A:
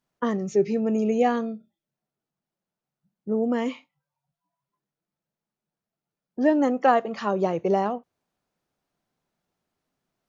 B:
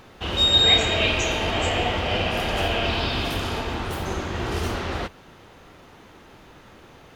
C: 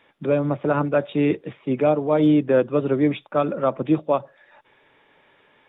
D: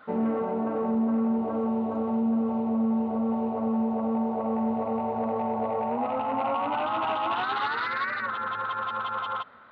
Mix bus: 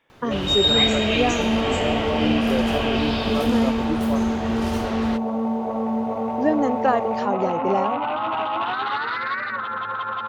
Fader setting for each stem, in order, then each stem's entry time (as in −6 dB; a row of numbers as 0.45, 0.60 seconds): −0.5, −2.0, −9.0, +3.0 decibels; 0.00, 0.10, 0.00, 1.30 seconds